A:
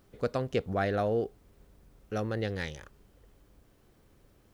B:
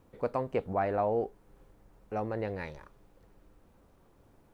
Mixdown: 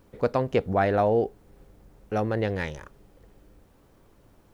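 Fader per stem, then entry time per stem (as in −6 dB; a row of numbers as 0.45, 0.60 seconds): 0.0, +2.5 decibels; 0.00, 0.00 seconds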